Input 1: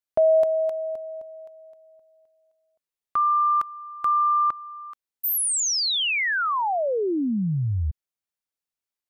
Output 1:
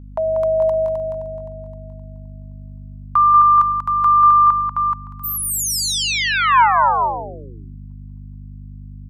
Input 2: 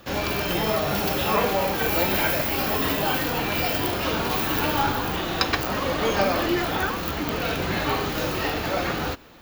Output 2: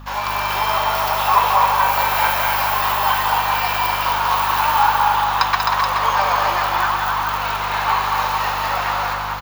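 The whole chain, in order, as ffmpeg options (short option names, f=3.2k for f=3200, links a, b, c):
-filter_complex "[0:a]highpass=f=960:t=q:w=4.9,aeval=exprs='val(0)+0.0158*(sin(2*PI*50*n/s)+sin(2*PI*2*50*n/s)/2+sin(2*PI*3*50*n/s)/3+sin(2*PI*4*50*n/s)/4+sin(2*PI*5*50*n/s)/5)':c=same,asplit=2[a][b];[b]aecho=0:1:189|261|427|565:0.501|0.596|0.473|0.1[c];[a][c]amix=inputs=2:normalize=0"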